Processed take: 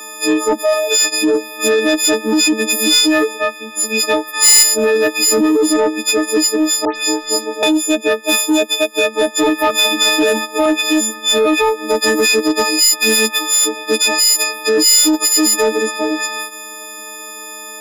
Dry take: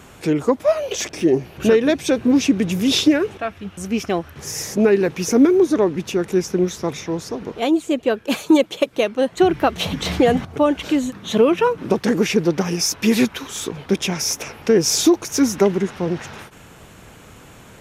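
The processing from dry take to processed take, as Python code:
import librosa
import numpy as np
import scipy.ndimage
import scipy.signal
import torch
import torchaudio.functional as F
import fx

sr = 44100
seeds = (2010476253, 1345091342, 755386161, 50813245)

p1 = fx.freq_snap(x, sr, grid_st=6)
p2 = scipy.signal.sosfilt(scipy.signal.butter(12, 240.0, 'highpass', fs=sr, output='sos'), p1)
p3 = fx.over_compress(p2, sr, threshold_db=-16.0, ratio=-0.5)
p4 = p2 + (p3 * 10.0 ** (-1.0 / 20.0))
p5 = fx.spec_box(p4, sr, start_s=4.34, length_s=0.29, low_hz=790.0, high_hz=11000.0, gain_db=11)
p6 = 10.0 ** (-4.5 / 20.0) * np.tanh(p5 / 10.0 ** (-4.5 / 20.0))
p7 = fx.dispersion(p6, sr, late='highs', ms=109.0, hz=2600.0, at=(6.85, 7.63))
p8 = fx.band_squash(p7, sr, depth_pct=40, at=(9.7, 10.66))
y = p8 * 10.0 ** (-1.0 / 20.0)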